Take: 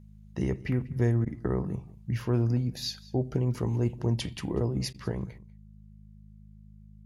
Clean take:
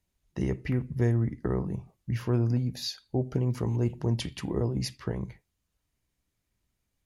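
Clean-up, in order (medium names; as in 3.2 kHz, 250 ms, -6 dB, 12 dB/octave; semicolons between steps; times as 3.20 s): de-hum 52.2 Hz, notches 4; interpolate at 1.25/4.93 s, 12 ms; inverse comb 193 ms -21.5 dB; gain correction +8.5 dB, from 5.38 s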